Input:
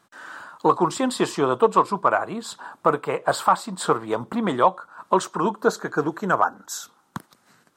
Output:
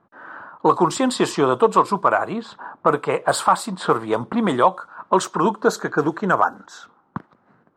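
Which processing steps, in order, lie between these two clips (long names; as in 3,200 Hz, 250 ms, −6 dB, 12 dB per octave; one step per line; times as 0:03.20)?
low-pass that shuts in the quiet parts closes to 960 Hz, open at −18 dBFS
0:03.11–0:04.69: parametric band 10,000 Hz +12.5 dB 0.26 octaves
in parallel at −0.5 dB: brickwall limiter −12.5 dBFS, peak gain reduction 7 dB
on the sum: level −1.5 dB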